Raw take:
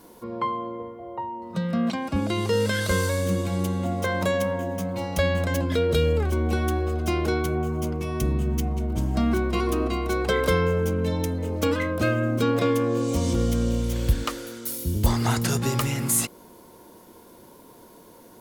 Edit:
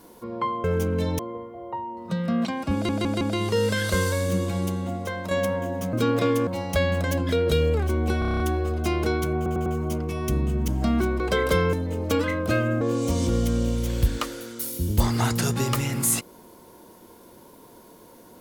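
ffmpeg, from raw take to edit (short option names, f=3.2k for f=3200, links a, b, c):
-filter_complex "[0:a]asplit=23[a][b][c][d][e][f][g][h][i][j][k][l][m][n][o][p][q][r][s][t][u][v][w];[a]atrim=end=0.642[x];[b]atrim=start=10.698:end=11.252[y];[c]atrim=start=0.638:end=2.342[z];[d]atrim=start=2.178:end=2.342[aa];[e]atrim=start=2.178:end=2.342[ab];[f]atrim=start=2.178:end=4.28,asetpts=PTS-STARTPTS,afade=t=out:st=1.322:d=0.78:silence=0.398107[ac];[g]atrim=start=4.28:end=4.902,asetpts=PTS-STARTPTS,afade=t=in:d=0.004:c=hsin:silence=0.398107[ad];[h]atrim=start=12.328:end=12.872[ae];[i]atrim=start=4.898:end=6.652[af];[j]atrim=start=6.618:end=6.652[ag];[k]atrim=start=6.618:end=6.652[ah];[l]atrim=start=6.618:end=6.652[ai];[m]atrim=start=6.618:end=6.652[aj];[n]atrim=start=6.618:end=6.652[ak];[o]atrim=start=6.618:end=6.652[al];[p]atrim=start=6.618:end=7.682[am];[q]atrim=start=7.578:end=7.682[an];[r]atrim=start=7.578:end=7.682[ao];[s]atrim=start=7.578:end=8.602[ap];[t]atrim=start=9.008:end=9.532[aq];[u]atrim=start=10.168:end=10.702[ar];[v]atrim=start=11.248:end=12.332[as];[w]atrim=start=12.868[at];[x][y]acrossfade=d=0.004:c1=hsin:c2=hsin[au];[au][z]acrossfade=d=0.004:c1=hsin:c2=hsin[av];[av][aa]acrossfade=d=0.004:c1=hsin:c2=hsin[aw];[aw][ab]acrossfade=d=0.004:c1=hsin:c2=hsin[ax];[ac][ad]concat=n=2:v=0:a=1[ay];[ax][ay]acrossfade=d=0.004:c1=hsin:c2=hsin[az];[az][ae]acrossfade=d=0.004:c1=hsin:c2=hsin[ba];[ba][af]acrossfade=d=0.004:c1=hsin:c2=hsin[bb];[bb][ag]acrossfade=d=0.004:c1=hsin:c2=hsin[bc];[bc][ah]acrossfade=d=0.004:c1=hsin:c2=hsin[bd];[bd][ai]acrossfade=d=0.004:c1=hsin:c2=hsin[be];[be][aj]acrossfade=d=0.004:c1=hsin:c2=hsin[bf];[bf][ak]acrossfade=d=0.004:c1=hsin:c2=hsin[bg];[bg][al]acrossfade=d=0.004:c1=hsin:c2=hsin[bh];[bh][am]acrossfade=d=0.004:c1=hsin:c2=hsin[bi];[bi][an]acrossfade=d=0.004:c1=hsin:c2=hsin[bj];[bj][ao]acrossfade=d=0.004:c1=hsin:c2=hsin[bk];[bk][ap]acrossfade=d=0.004:c1=hsin:c2=hsin[bl];[bl][aq]acrossfade=d=0.004:c1=hsin:c2=hsin[bm];[bm][ar]acrossfade=d=0.004:c1=hsin:c2=hsin[bn];[bn][as]acrossfade=d=0.004:c1=hsin:c2=hsin[bo];[bo][at]acrossfade=d=0.004:c1=hsin:c2=hsin"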